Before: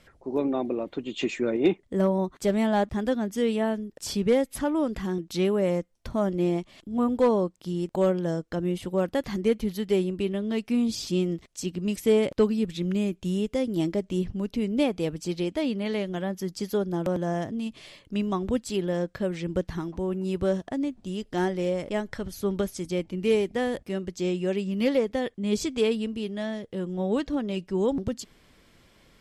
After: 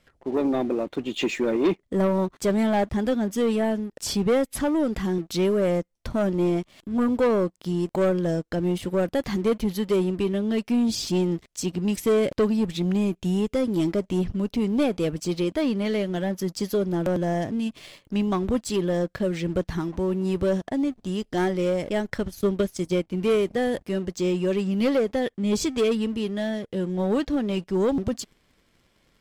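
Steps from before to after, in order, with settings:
leveller curve on the samples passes 2
0:22.04–0:23.11: transient designer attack +3 dB, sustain −8 dB
level −3 dB

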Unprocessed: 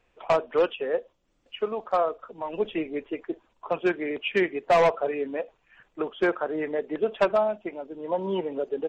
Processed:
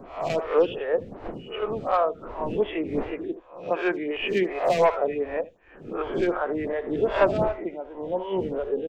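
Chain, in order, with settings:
peak hold with a rise ahead of every peak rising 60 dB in 0.46 s
wind on the microphone 380 Hz −38 dBFS
on a send: single-tap delay 77 ms −15 dB
on the sum: phaser with staggered stages 2.7 Hz
level +2 dB

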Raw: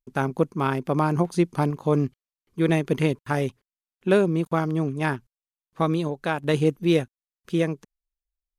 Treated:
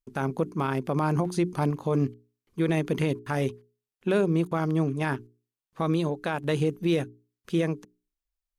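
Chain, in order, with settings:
mains-hum notches 60/120/180/240/300/360/420 Hz
brickwall limiter −15.5 dBFS, peak gain reduction 8 dB

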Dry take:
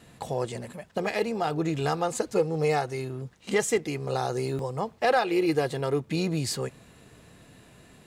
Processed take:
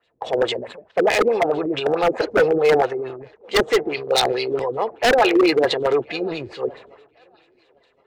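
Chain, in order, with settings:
auto-filter low-pass sine 4.6 Hz 280–4,000 Hz
low shelf with overshoot 300 Hz −13.5 dB, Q 1.5
transient designer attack 0 dB, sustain +7 dB
0:03.94–0:04.50: drawn EQ curve 1,400 Hz 0 dB, 4,500 Hz +12 dB, 7,100 Hz −13 dB, 11,000 Hz +1 dB
on a send: feedback echo with a high-pass in the loop 1,064 ms, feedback 61%, high-pass 300 Hz, level −21 dB
on the sum: wave folding −16.5 dBFS
multiband upward and downward expander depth 70%
level +6.5 dB

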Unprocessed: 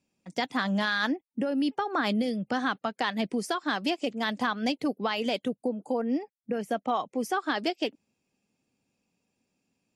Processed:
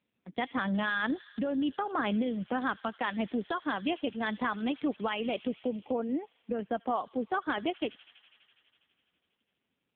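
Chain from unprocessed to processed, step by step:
delay with a high-pass on its return 82 ms, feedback 84%, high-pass 2,600 Hz, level −14.5 dB
level −2 dB
AMR narrowband 5.9 kbit/s 8,000 Hz

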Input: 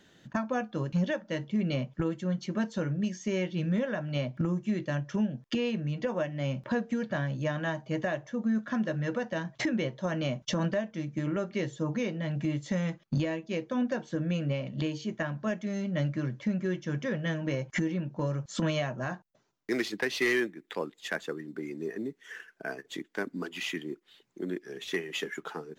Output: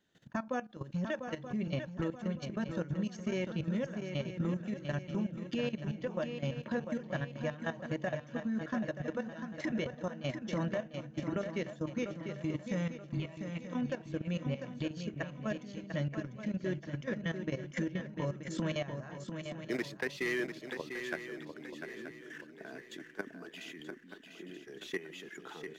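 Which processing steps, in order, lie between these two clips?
output level in coarse steps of 15 dB
0:13.05–0:13.70: phaser with its sweep stopped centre 1,600 Hz, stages 6
feedback echo with a long and a short gap by turns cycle 929 ms, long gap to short 3 to 1, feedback 38%, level −7.5 dB
level −3 dB

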